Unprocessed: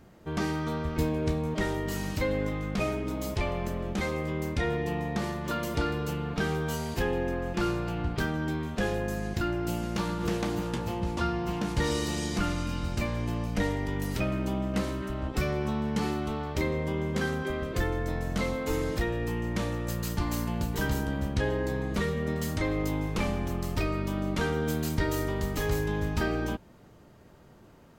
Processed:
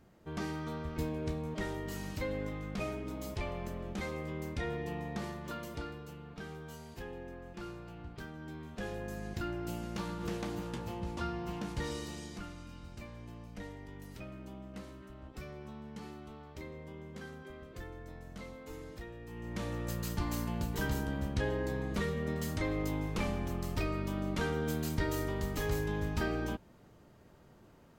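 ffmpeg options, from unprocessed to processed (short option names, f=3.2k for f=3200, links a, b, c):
-af "volume=12dB,afade=t=out:st=5.24:d=0.82:silence=0.398107,afade=t=in:st=8.36:d=0.98:silence=0.398107,afade=t=out:st=11.58:d=0.92:silence=0.354813,afade=t=in:st=19.27:d=0.53:silence=0.251189"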